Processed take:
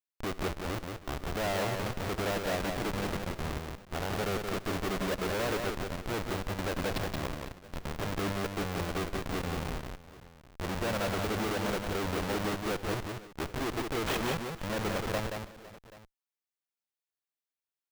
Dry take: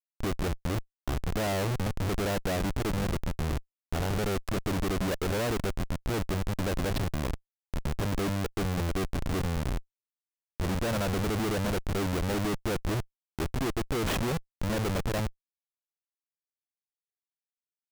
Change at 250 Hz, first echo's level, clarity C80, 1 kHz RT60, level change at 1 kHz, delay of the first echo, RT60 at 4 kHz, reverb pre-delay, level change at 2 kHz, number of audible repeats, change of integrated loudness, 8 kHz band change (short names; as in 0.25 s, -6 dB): -4.0 dB, -18.5 dB, none, none, +0.5 dB, 69 ms, none, none, +0.5 dB, 4, -2.5 dB, -2.5 dB